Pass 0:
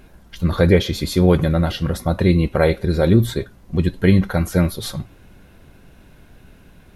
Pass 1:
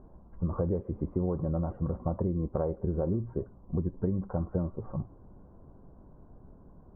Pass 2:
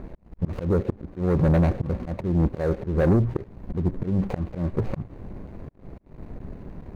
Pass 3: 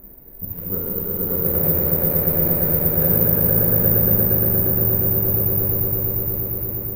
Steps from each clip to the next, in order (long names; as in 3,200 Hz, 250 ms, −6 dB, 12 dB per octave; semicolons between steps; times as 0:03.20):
elliptic low-pass filter 1,100 Hz, stop band 70 dB; downward compressor 12 to 1, threshold −21 dBFS, peak gain reduction 13.5 dB; level −5 dB
running median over 41 samples; volume swells 246 ms; leveller curve on the samples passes 2; level +8 dB
on a send: echo that builds up and dies away 117 ms, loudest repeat 5, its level −4 dB; on the sum: dense smooth reverb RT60 4.8 s, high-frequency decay 1×, DRR −6.5 dB; bad sample-rate conversion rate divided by 3×, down none, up zero stuff; level −11.5 dB